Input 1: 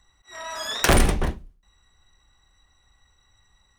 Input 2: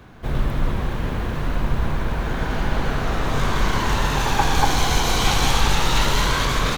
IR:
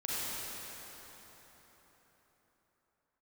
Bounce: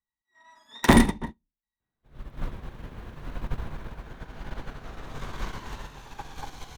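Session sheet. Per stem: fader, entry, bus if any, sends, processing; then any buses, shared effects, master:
−3.0 dB, 0.00 s, no send, hollow resonant body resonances 230/920/1,900/3,600 Hz, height 15 dB, ringing for 30 ms
−8.0 dB, 1.80 s, no send, automatic gain control gain up to 11 dB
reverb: not used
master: expander for the loud parts 2.5 to 1, over −35 dBFS

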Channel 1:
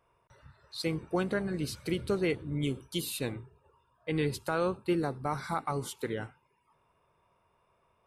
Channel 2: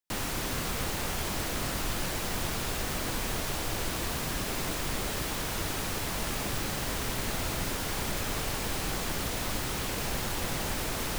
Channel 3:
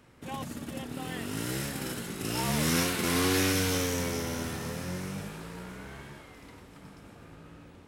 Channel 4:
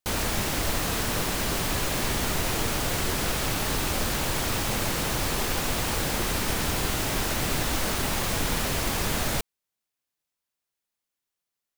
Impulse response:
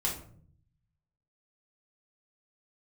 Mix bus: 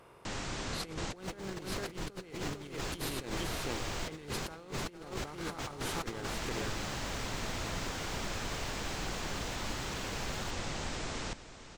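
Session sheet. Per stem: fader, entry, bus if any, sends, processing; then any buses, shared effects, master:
+1.5 dB, 0.00 s, no send, echo send −7 dB, compressor on every frequency bin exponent 0.6; tuned comb filter 400 Hz, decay 0.47 s, mix 40%; expander for the loud parts 1.5 to 1, over −40 dBFS
−8.0 dB, 0.15 s, no send, echo send −12.5 dB, Butterworth low-pass 7,900 Hz 48 dB per octave
muted
−14.5 dB, 1.10 s, no send, echo send −14 dB, high-pass filter 630 Hz; high-shelf EQ 4,700 Hz −10 dB; brickwall limiter −26.5 dBFS, peak gain reduction 7 dB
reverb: not used
echo: single-tap delay 453 ms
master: compressor whose output falls as the input rises −37 dBFS, ratio −0.5

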